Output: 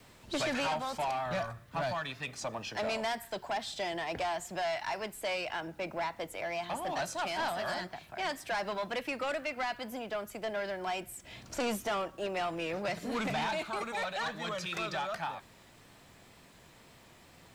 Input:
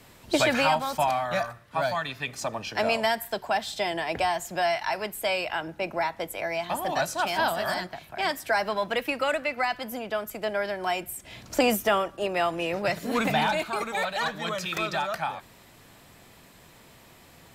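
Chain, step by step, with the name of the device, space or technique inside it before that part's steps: 1.26–1.93 low shelf 240 Hz +9 dB; compact cassette (soft clip -24 dBFS, distortion -11 dB; LPF 9400 Hz 12 dB/oct; wow and flutter; white noise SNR 37 dB); gain -4.5 dB

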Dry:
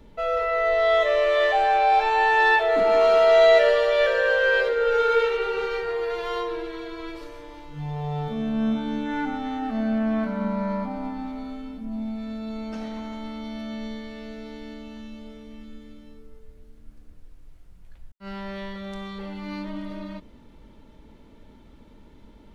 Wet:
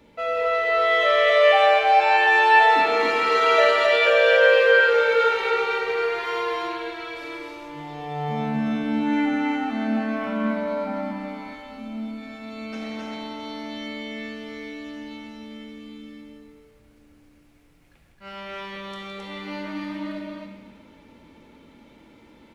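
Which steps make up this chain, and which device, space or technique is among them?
stadium PA (HPF 240 Hz 6 dB/oct; bell 2300 Hz +6 dB 0.41 oct; loudspeakers at several distances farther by 56 m -10 dB, 91 m -2 dB; reverb RT60 1.5 s, pre-delay 3 ms, DRR 3.5 dB)

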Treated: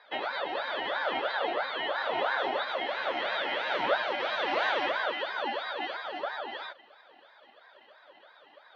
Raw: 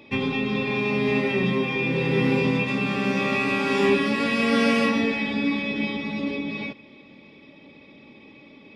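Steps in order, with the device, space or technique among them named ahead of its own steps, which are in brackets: voice changer toy (ring modulator with a swept carrier 920 Hz, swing 45%, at 3 Hz; speaker cabinet 450–4200 Hz, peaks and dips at 580 Hz +9 dB, 1100 Hz -5 dB, 2000 Hz +3 dB); gain -5 dB

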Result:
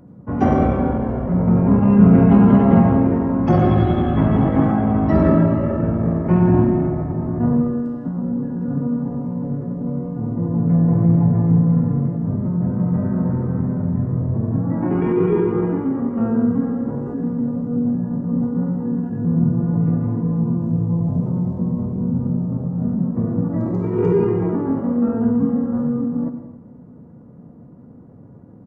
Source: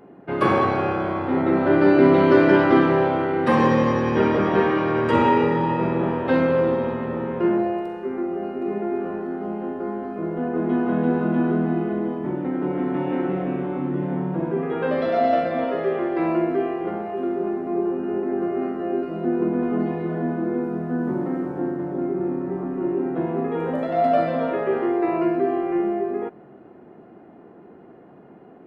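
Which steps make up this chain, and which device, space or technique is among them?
monster voice (pitch shift -6.5 st; formant shift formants -2.5 st; low shelf 130 Hz +8 dB; reverb RT60 0.90 s, pre-delay 76 ms, DRR 7 dB); 3.78–4.76 high shelf 4200 Hz +8.5 dB; gain +1 dB

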